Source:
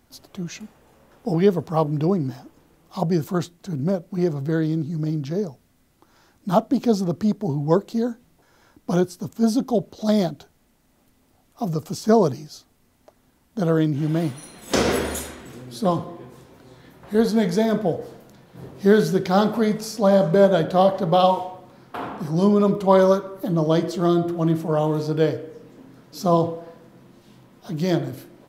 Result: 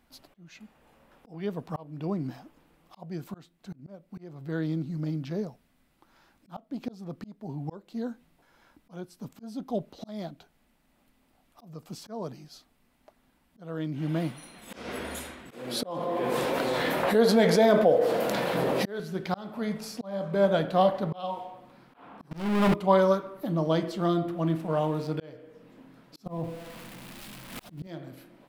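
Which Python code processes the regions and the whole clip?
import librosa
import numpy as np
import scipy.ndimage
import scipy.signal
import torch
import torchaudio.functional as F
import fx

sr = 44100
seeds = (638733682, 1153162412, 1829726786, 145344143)

y = fx.chain(x, sr, fx.highpass(hz=350.0, slope=6),
    fx.peak_eq(hz=520.0, db=8.0, octaves=0.77),
    fx.env_flatten(amount_pct=70), at=(15.51, 19.0))
y = fx.chain(y, sr, fx.lowpass(hz=9400.0, slope=12),
    fx.power_curve(exponent=0.35), at=(22.31, 22.74))
y = fx.chain(y, sr, fx.backlash(play_db=-40.0),
    fx.peak_eq(hz=9500.0, db=3.0, octaves=1.3), at=(24.52, 25.16))
y = fx.chain(y, sr, fx.crossing_spikes(level_db=-18.5),
    fx.tilt_eq(slope=-3.5),
    fx.pre_swell(db_per_s=90.0), at=(26.26, 27.87))
y = fx.graphic_eq_15(y, sr, hz=(100, 400, 2500, 6300), db=(-11, -5, 3, -6))
y = fx.auto_swell(y, sr, attack_ms=522.0)
y = fx.high_shelf(y, sr, hz=9000.0, db=-5.0)
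y = F.gain(torch.from_numpy(y), -4.0).numpy()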